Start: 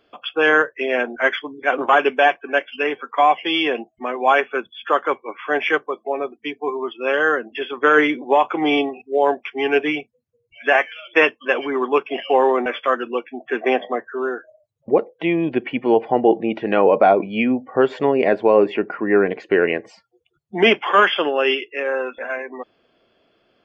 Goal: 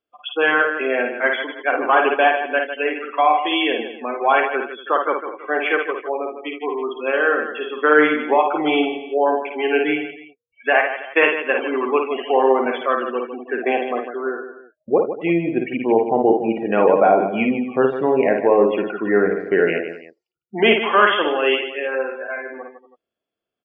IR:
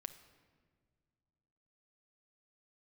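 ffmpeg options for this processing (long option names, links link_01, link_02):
-filter_complex "[0:a]afftdn=noise_reduction=24:noise_floor=-28,asplit=2[link_01][link_02];[link_02]aecho=0:1:53|77|152|236|324:0.596|0.15|0.335|0.119|0.112[link_03];[link_01][link_03]amix=inputs=2:normalize=0,volume=-1.5dB"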